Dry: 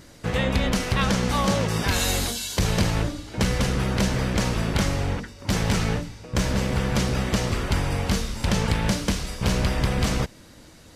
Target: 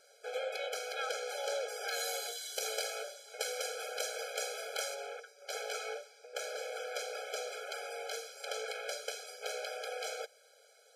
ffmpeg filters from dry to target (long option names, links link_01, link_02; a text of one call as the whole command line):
ffmpeg -i in.wav -filter_complex "[0:a]asettb=1/sr,asplit=3[link_01][link_02][link_03];[link_01]atrim=end=2.564[link_04];[link_02]atrim=start=2.56:end=4.95,asetpts=PTS-STARTPTS,afade=type=in:duration=0.004:curve=qsin,afade=type=out:start_time=2.386:duration=0.004:curve=qsin,highshelf=frequency=5200:gain=8.5[link_05];[link_03]atrim=start=4.946[link_06];[link_04][link_05]acrossfade=duration=0.004:curve1=hsin:curve2=qsin[link_07];[link_07][link_06]acrossfade=duration=0.004:curve1=qsin:curve2=hsin,afftfilt=real='re*eq(mod(floor(b*sr/1024/430),2),1)':imag='im*eq(mod(floor(b*sr/1024/430),2),1)':win_size=1024:overlap=0.75,volume=-8.5dB" out.wav